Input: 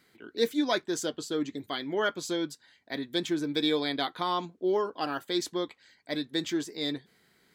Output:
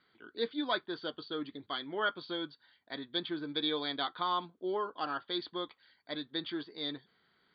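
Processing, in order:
Chebyshev low-pass with heavy ripple 4,700 Hz, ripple 9 dB

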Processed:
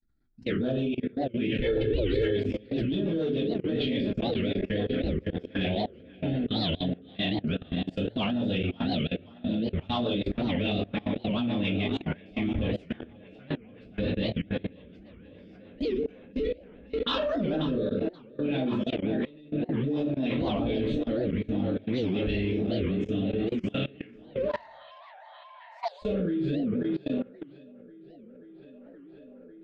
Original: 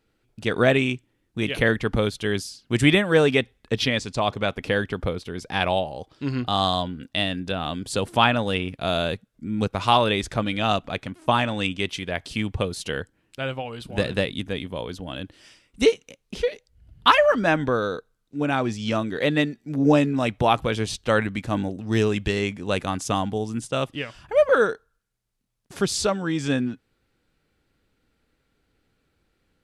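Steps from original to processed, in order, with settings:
phaser swept by the level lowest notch 480 Hz, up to 2,100 Hz, full sweep at −15 dBFS
head-to-tape spacing loss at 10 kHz 35 dB
on a send: tape delay 535 ms, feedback 82%, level −7.5 dB, low-pass 4,100 Hz
0:24.46–0:26.02: on the sum: frequency shifter +450 Hz
convolution reverb RT60 0.45 s, pre-delay 4 ms, DRR −7 dB
in parallel at −10 dB: soft clipping −14.5 dBFS, distortion −11 dB
0:18.96–0:19.64: on the sum: compressor whose output falls as the input rises −20 dBFS, ratio −1
rotating-speaker cabinet horn 7 Hz, later 0.6 Hz, at 0:15.51
graphic EQ with 10 bands 125 Hz −8 dB, 250 Hz +5 dB, 1,000 Hz −8 dB, 4,000 Hz +12 dB
output level in coarse steps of 22 dB
0:01.63–0:02.37: comb filter 2.3 ms, depth 81%
wow of a warped record 78 rpm, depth 250 cents
level −5.5 dB

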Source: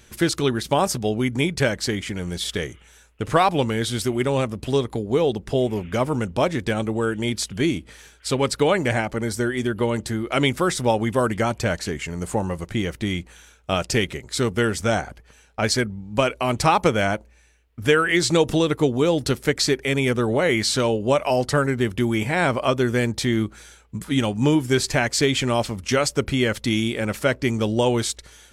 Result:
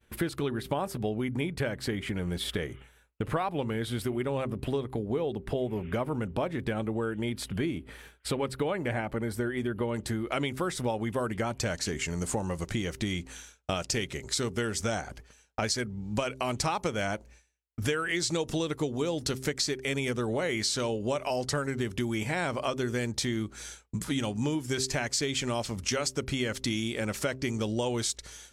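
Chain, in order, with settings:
hum removal 130.9 Hz, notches 3
downward expander −43 dBFS
parametric band 6,200 Hz −13 dB 1.2 octaves, from 0:09.94 −3.5 dB, from 0:11.59 +6 dB
downward compressor 4 to 1, threshold −30 dBFS, peak gain reduction 15 dB
level +1 dB

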